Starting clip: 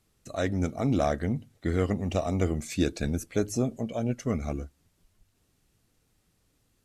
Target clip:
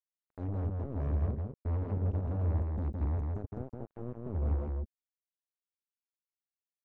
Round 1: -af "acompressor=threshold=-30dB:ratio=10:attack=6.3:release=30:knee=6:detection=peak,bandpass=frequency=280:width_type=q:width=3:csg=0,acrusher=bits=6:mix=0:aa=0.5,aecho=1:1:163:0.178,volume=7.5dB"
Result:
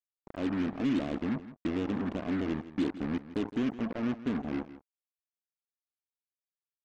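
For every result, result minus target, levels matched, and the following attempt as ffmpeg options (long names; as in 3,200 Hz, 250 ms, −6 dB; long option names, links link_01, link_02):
125 Hz band −12.0 dB; echo-to-direct −12 dB
-af "acompressor=threshold=-30dB:ratio=10:attack=6.3:release=30:knee=6:detection=peak,bandpass=frequency=73:width_type=q:width=3:csg=0,acrusher=bits=6:mix=0:aa=0.5,aecho=1:1:163:0.178,volume=7.5dB"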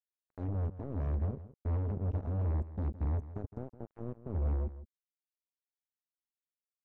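echo-to-direct −12 dB
-af "acompressor=threshold=-30dB:ratio=10:attack=6.3:release=30:knee=6:detection=peak,bandpass=frequency=73:width_type=q:width=3:csg=0,acrusher=bits=6:mix=0:aa=0.5,aecho=1:1:163:0.708,volume=7.5dB"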